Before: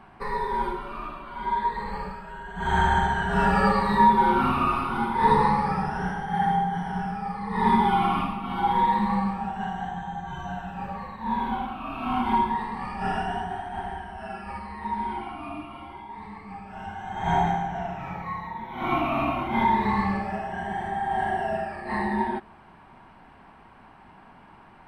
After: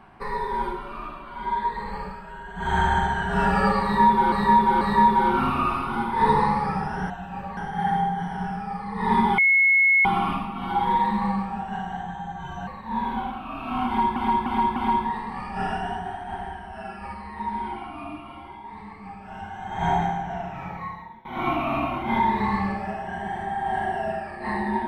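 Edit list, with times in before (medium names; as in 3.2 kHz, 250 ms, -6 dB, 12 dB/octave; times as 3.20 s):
3.83–4.32 s: loop, 3 plays
7.93 s: add tone 2.18 kHz -14.5 dBFS 0.67 s
10.55–11.02 s: move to 6.12 s
12.21–12.51 s: loop, 4 plays
18.25–18.70 s: fade out, to -18 dB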